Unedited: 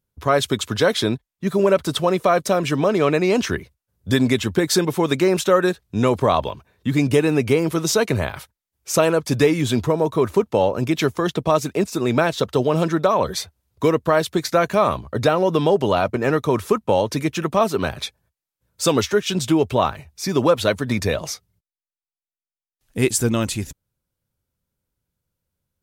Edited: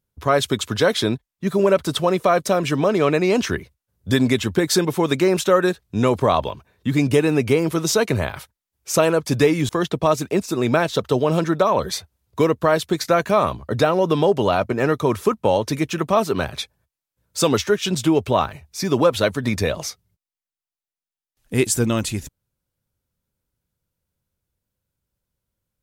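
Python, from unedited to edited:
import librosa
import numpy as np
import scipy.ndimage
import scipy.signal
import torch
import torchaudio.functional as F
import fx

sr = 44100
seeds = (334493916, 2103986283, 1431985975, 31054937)

y = fx.edit(x, sr, fx.cut(start_s=9.69, length_s=1.44), tone=tone)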